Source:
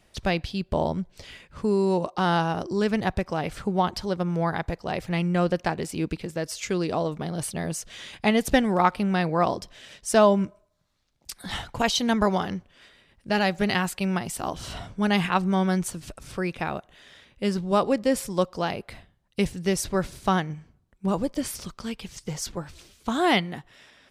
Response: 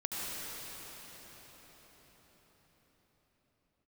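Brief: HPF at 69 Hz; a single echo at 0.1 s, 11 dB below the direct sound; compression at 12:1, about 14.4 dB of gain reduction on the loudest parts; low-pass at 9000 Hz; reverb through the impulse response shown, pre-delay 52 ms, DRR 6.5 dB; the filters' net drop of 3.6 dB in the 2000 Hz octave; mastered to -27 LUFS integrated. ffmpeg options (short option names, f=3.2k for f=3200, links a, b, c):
-filter_complex "[0:a]highpass=69,lowpass=9k,equalizer=f=2k:t=o:g=-4.5,acompressor=threshold=-28dB:ratio=12,aecho=1:1:100:0.282,asplit=2[a][b];[1:a]atrim=start_sample=2205,adelay=52[c];[b][c]afir=irnorm=-1:irlink=0,volume=-11.5dB[d];[a][d]amix=inputs=2:normalize=0,volume=6.5dB"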